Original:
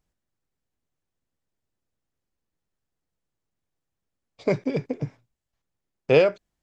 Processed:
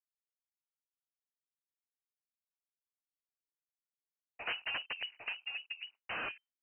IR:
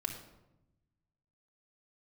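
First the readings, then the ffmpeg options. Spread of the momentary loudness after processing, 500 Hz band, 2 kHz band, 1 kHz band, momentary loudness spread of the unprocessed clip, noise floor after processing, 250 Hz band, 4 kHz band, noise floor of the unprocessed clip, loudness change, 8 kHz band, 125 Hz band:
6 LU, −31.5 dB, −4.5 dB, −9.0 dB, 15 LU, below −85 dBFS, −30.5 dB, +0.5 dB, −84 dBFS, −16.0 dB, can't be measured, −34.0 dB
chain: -filter_complex "[0:a]asoftclip=type=tanh:threshold=-22dB,afreqshift=31,acompressor=threshold=-35dB:ratio=10,acrusher=samples=8:mix=1:aa=0.000001:lfo=1:lforange=4.8:lforate=0.85,highpass=frequency=520:poles=1,asplit=2[link_01][link_02];[link_02]aecho=0:1:802:0.531[link_03];[link_01][link_03]amix=inputs=2:normalize=0,afwtdn=0.00112,aeval=exprs='(mod(66.8*val(0)+1,2)-1)/66.8':channel_layout=same,agate=range=-33dB:threshold=-59dB:ratio=3:detection=peak,lowpass=frequency=2600:width_type=q:width=0.5098,lowpass=frequency=2600:width_type=q:width=0.6013,lowpass=frequency=2600:width_type=q:width=0.9,lowpass=frequency=2600:width_type=q:width=2.563,afreqshift=-3100,dynaudnorm=framelen=290:gausssize=11:maxgain=4dB,volume=3.5dB"

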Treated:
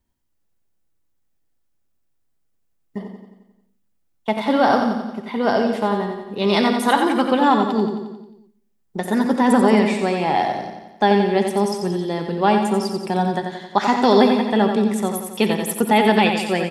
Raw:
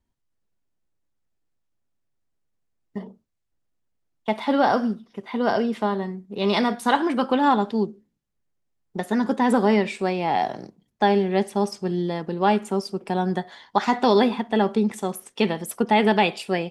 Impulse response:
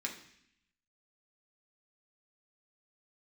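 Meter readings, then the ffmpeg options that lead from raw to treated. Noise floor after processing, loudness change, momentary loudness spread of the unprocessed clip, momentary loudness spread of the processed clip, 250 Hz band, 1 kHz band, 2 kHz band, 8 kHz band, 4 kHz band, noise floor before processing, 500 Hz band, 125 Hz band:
−66 dBFS, +4.0 dB, 11 LU, 12 LU, +4.5 dB, +3.5 dB, +4.0 dB, +7.5 dB, +4.5 dB, −75 dBFS, +4.0 dB, +3.5 dB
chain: -filter_complex "[0:a]highshelf=frequency=11000:gain=9.5,aecho=1:1:89|178|267|356|445|534|623:0.473|0.27|0.154|0.0876|0.0499|0.0285|0.0162,asplit=2[link_01][link_02];[1:a]atrim=start_sample=2205,adelay=62[link_03];[link_02][link_03]afir=irnorm=-1:irlink=0,volume=-15dB[link_04];[link_01][link_04]amix=inputs=2:normalize=0,volume=2.5dB"

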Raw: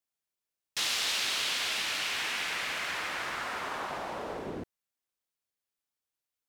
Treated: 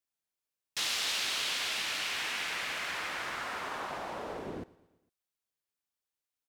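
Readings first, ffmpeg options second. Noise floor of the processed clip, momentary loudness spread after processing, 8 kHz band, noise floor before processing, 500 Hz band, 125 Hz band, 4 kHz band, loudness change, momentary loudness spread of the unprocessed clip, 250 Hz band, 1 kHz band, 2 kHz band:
below −85 dBFS, 10 LU, −2.0 dB, below −85 dBFS, −2.0 dB, −2.0 dB, −2.0 dB, −2.0 dB, 10 LU, −2.0 dB, −2.0 dB, −2.0 dB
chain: -af "aecho=1:1:114|228|342|456:0.0841|0.0471|0.0264|0.0148,volume=-2dB"

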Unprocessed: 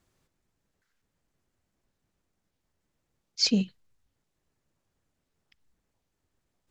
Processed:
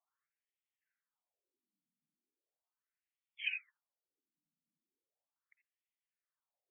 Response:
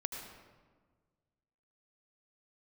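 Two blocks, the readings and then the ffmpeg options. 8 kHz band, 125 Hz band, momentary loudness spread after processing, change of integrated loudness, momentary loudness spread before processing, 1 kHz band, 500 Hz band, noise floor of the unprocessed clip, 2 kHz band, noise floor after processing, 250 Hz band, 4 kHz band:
below −40 dB, below −40 dB, 4 LU, −14.0 dB, 16 LU, can't be measured, below −40 dB, −81 dBFS, +3.0 dB, below −85 dBFS, below −40 dB, −18.5 dB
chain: -filter_complex "[1:a]atrim=start_sample=2205,atrim=end_sample=6174,asetrate=66150,aresample=44100[link_01];[0:a][link_01]afir=irnorm=-1:irlink=0,afftdn=noise_reduction=13:noise_floor=-64,afftfilt=real='re*between(b*sr/1024,210*pow(2600/210,0.5+0.5*sin(2*PI*0.38*pts/sr))/1.41,210*pow(2600/210,0.5+0.5*sin(2*PI*0.38*pts/sr))*1.41)':imag='im*between(b*sr/1024,210*pow(2600/210,0.5+0.5*sin(2*PI*0.38*pts/sr))/1.41,210*pow(2600/210,0.5+0.5*sin(2*PI*0.38*pts/sr))*1.41)':win_size=1024:overlap=0.75,volume=7dB"

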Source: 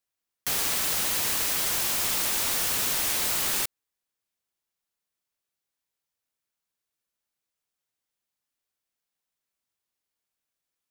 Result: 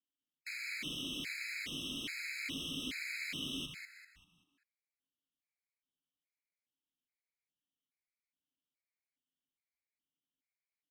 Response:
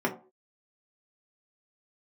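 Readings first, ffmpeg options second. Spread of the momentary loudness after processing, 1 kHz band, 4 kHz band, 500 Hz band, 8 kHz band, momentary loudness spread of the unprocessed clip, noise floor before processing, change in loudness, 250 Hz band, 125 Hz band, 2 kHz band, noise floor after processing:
7 LU, −25.5 dB, −9.5 dB, −17.0 dB, −23.5 dB, 3 LU, below −85 dBFS, −15.5 dB, −2.0 dB, −8.0 dB, −7.0 dB, below −85 dBFS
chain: -filter_complex "[0:a]asplit=3[link_01][link_02][link_03];[link_01]bandpass=frequency=270:width_type=q:width=8,volume=0dB[link_04];[link_02]bandpass=frequency=2290:width_type=q:width=8,volume=-6dB[link_05];[link_03]bandpass=frequency=3010:width_type=q:width=8,volume=-9dB[link_06];[link_04][link_05][link_06]amix=inputs=3:normalize=0,asplit=6[link_07][link_08][link_09][link_10][link_11][link_12];[link_08]adelay=195,afreqshift=-110,volume=-7dB[link_13];[link_09]adelay=390,afreqshift=-220,volume=-15dB[link_14];[link_10]adelay=585,afreqshift=-330,volume=-22.9dB[link_15];[link_11]adelay=780,afreqshift=-440,volume=-30.9dB[link_16];[link_12]adelay=975,afreqshift=-550,volume=-38.8dB[link_17];[link_07][link_13][link_14][link_15][link_16][link_17]amix=inputs=6:normalize=0,afftfilt=real='re*gt(sin(2*PI*1.2*pts/sr)*(1-2*mod(floor(b*sr/1024/1300),2)),0)':imag='im*gt(sin(2*PI*1.2*pts/sr)*(1-2*mod(floor(b*sr/1024/1300),2)),0)':win_size=1024:overlap=0.75,volume=6.5dB"

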